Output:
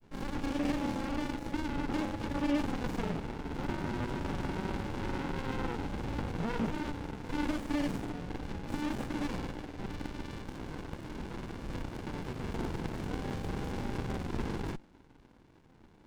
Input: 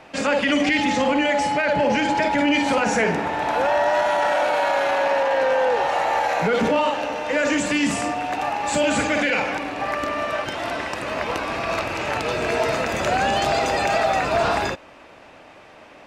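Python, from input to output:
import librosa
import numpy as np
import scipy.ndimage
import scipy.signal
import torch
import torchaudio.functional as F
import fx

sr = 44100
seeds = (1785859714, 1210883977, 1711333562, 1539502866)

y = fx.granulator(x, sr, seeds[0], grain_ms=100.0, per_s=20.0, spray_ms=38.0, spread_st=0)
y = fx.running_max(y, sr, window=65)
y = y * librosa.db_to_amplitude(-8.5)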